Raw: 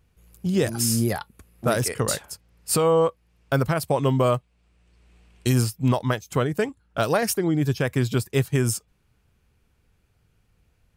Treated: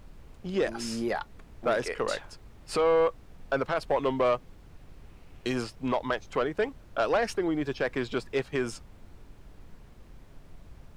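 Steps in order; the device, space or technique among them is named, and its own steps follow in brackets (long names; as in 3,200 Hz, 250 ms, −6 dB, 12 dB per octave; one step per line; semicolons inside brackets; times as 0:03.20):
aircraft cabin announcement (band-pass filter 360–3,300 Hz; soft clipping −17.5 dBFS, distortion −15 dB; brown noise bed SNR 16 dB)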